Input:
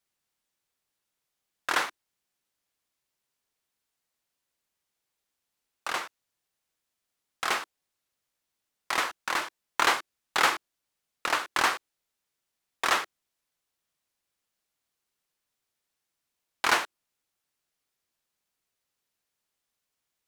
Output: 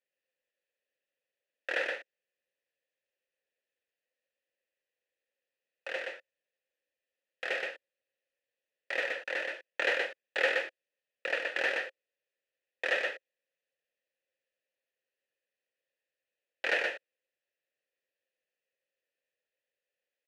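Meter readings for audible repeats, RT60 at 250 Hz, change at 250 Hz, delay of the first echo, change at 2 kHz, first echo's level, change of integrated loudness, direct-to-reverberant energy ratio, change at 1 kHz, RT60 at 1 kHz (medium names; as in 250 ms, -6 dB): 1, no reverb, -8.5 dB, 123 ms, -1.5 dB, -3.5 dB, -4.5 dB, no reverb, -15.0 dB, no reverb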